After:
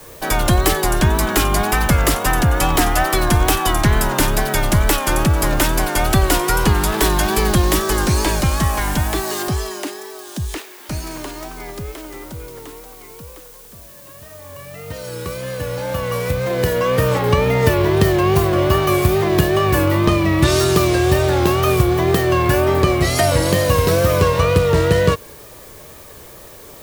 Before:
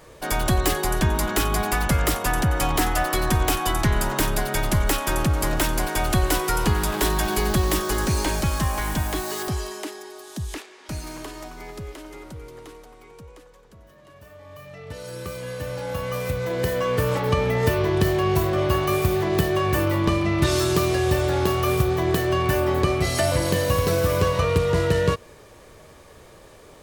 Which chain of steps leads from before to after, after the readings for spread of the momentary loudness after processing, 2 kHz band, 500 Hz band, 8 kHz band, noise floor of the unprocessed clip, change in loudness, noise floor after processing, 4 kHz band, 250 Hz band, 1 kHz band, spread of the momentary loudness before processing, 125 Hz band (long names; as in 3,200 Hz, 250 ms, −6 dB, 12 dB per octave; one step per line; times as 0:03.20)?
15 LU, +6.0 dB, +6.0 dB, +6.0 dB, −48 dBFS, +6.0 dB, −40 dBFS, +6.0 dB, +6.0 dB, +6.0 dB, 15 LU, +6.0 dB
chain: tape wow and flutter 71 cents
background noise blue −49 dBFS
level +6 dB